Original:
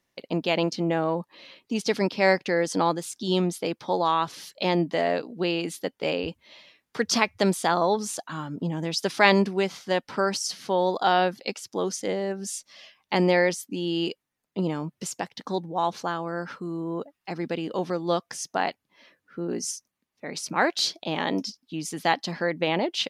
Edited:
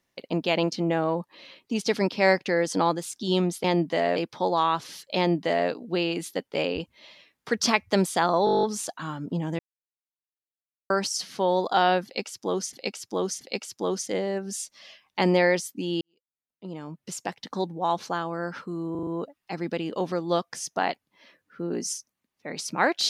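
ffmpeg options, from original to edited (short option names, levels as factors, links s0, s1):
-filter_complex "[0:a]asplit=21[s0][s1][s2][s3][s4][s5][s6][s7][s8][s9][s10][s11][s12][s13][s14][s15][s16][s17][s18][s19][s20];[s0]atrim=end=3.642[s21];[s1]atrim=start=4.648:end=5.172[s22];[s2]atrim=start=3.638:end=7.952[s23];[s3]atrim=start=7.928:end=7.952[s24];[s4]atrim=start=7.928:end=7.952[s25];[s5]atrim=start=7.928:end=7.952[s26];[s6]atrim=start=7.928:end=7.952[s27];[s7]atrim=start=7.928:end=7.952[s28];[s8]atrim=start=7.928:end=7.952[s29];[s9]atrim=start=7.928:end=7.952[s30];[s10]atrim=start=7.928:end=7.952[s31];[s11]atrim=start=7.928:end=8.89,asetpts=PTS-STARTPTS,afade=t=out:st=0.958:d=0.004:c=hsin[s32];[s12]atrim=start=8.89:end=10.2,asetpts=PTS-STARTPTS,volume=0[s33];[s13]atrim=start=10.2:end=12.032,asetpts=PTS-STARTPTS,afade=t=in:d=0.004:c=hsin[s34];[s14]atrim=start=11.348:end=12.032[s35];[s15]atrim=start=11.348:end=13.95,asetpts=PTS-STARTPTS,afade=t=out:st=2.598:d=0.004:c=hsin[s36];[s16]atrim=start=13.95:end=16.892,asetpts=PTS-STARTPTS,afade=t=in:d=1.3:c=qua[s37];[s17]atrim=start=16.848:end=16.892[s38];[s18]atrim=start=16.848:end=16.892[s39];[s19]atrim=start=16.848:end=16.892[s40];[s20]atrim=start=16.848[s41];[s21][s22]acrossfade=d=0.004:c1=hsin:c2=hsin[s42];[s42][s23]acrossfade=d=0.004:c1=hsin:c2=hsin[s43];[s43][s24]acrossfade=d=0.004:c1=hsin:c2=hsin[s44];[s44][s25]acrossfade=d=0.004:c1=hsin:c2=hsin[s45];[s45][s26]acrossfade=d=0.004:c1=hsin:c2=hsin[s46];[s46][s27]acrossfade=d=0.004:c1=hsin:c2=hsin[s47];[s47][s28]acrossfade=d=0.004:c1=hsin:c2=hsin[s48];[s48][s29]acrossfade=d=0.004:c1=hsin:c2=hsin[s49];[s49][s30]acrossfade=d=0.004:c1=hsin:c2=hsin[s50];[s50][s31]acrossfade=d=0.004:c1=hsin:c2=hsin[s51];[s32][s33][s34]concat=n=3:v=0:a=1[s52];[s51][s52]acrossfade=d=0.004:c1=hsin:c2=hsin[s53];[s53][s35]acrossfade=d=0.004:c1=hsin:c2=hsin[s54];[s36][s37]concat=n=2:v=0:a=1[s55];[s54][s55]acrossfade=d=0.004:c1=hsin:c2=hsin[s56];[s56][s38]acrossfade=d=0.004:c1=hsin:c2=hsin[s57];[s57][s39]acrossfade=d=0.004:c1=hsin:c2=hsin[s58];[s58][s40]acrossfade=d=0.004:c1=hsin:c2=hsin[s59];[s59][s41]acrossfade=d=0.004:c1=hsin:c2=hsin"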